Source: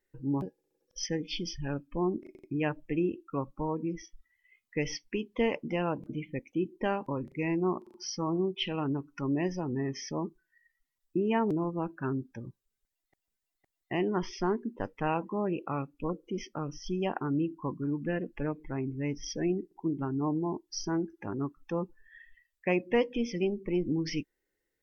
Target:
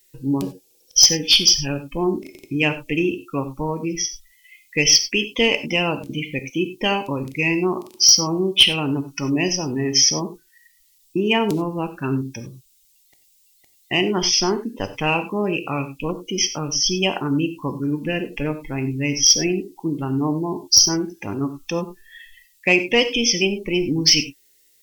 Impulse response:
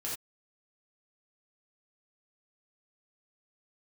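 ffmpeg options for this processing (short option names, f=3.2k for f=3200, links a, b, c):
-filter_complex "[0:a]aexciter=amount=4.9:drive=8.6:freq=2.4k,aeval=exprs='clip(val(0),-1,0.251)':c=same,acontrast=85,asplit=2[a][b];[1:a]atrim=start_sample=2205,asetrate=40131,aresample=44100[c];[b][c]afir=irnorm=-1:irlink=0,volume=-9.5dB[d];[a][d]amix=inputs=2:normalize=0,volume=-1dB"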